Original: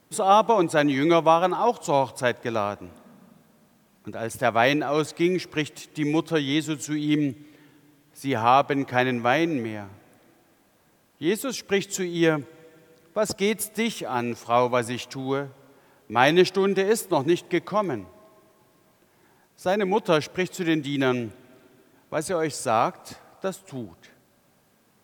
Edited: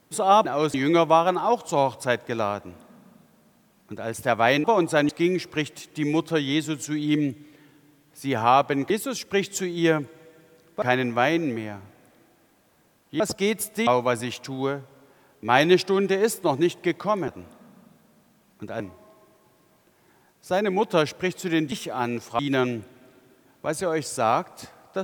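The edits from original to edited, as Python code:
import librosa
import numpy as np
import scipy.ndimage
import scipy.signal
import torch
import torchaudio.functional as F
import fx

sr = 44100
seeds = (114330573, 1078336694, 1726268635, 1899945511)

y = fx.edit(x, sr, fx.swap(start_s=0.45, length_s=0.45, other_s=4.8, other_length_s=0.29),
    fx.duplicate(start_s=2.73, length_s=1.52, to_s=17.95),
    fx.move(start_s=11.28, length_s=1.92, to_s=8.9),
    fx.move(start_s=13.87, length_s=0.67, to_s=20.87), tone=tone)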